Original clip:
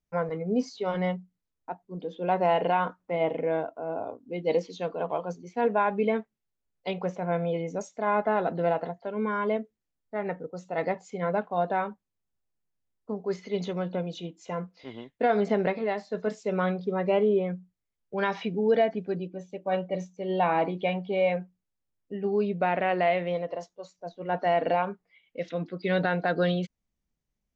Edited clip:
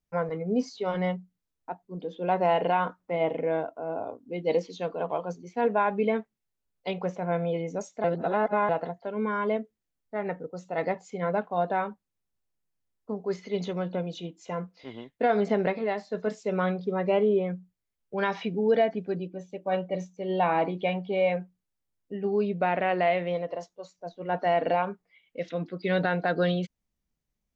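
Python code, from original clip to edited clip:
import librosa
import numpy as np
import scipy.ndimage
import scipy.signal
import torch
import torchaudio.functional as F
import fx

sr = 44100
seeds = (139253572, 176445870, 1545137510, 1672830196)

y = fx.edit(x, sr, fx.reverse_span(start_s=8.04, length_s=0.65), tone=tone)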